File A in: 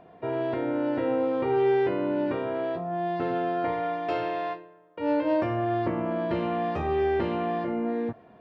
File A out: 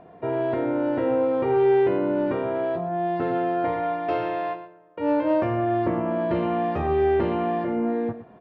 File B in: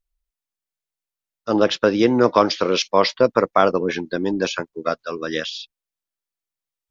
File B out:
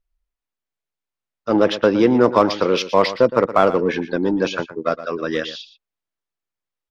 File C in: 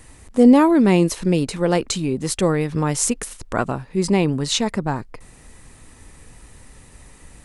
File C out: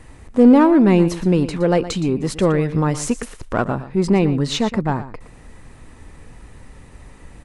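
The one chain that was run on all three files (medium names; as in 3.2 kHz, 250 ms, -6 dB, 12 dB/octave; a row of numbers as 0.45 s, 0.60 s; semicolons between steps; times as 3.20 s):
low-pass 2.1 kHz 6 dB/octave; in parallel at -4.5 dB: saturation -20 dBFS; on the sum: delay 117 ms -14 dB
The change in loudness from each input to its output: +3.5 LU, +1.5 LU, +1.5 LU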